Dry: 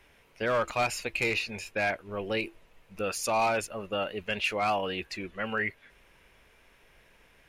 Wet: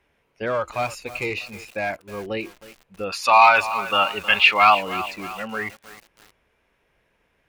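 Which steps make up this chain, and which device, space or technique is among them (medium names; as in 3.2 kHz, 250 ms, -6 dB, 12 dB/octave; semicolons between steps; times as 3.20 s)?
spectral noise reduction 8 dB; high-pass 49 Hz 6 dB/octave; behind a face mask (treble shelf 2.3 kHz -7.5 dB); 3.12–4.75 s: high-order bell 2 kHz +15.5 dB 2.8 oct; bit-crushed delay 314 ms, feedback 55%, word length 6-bit, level -13.5 dB; trim +4 dB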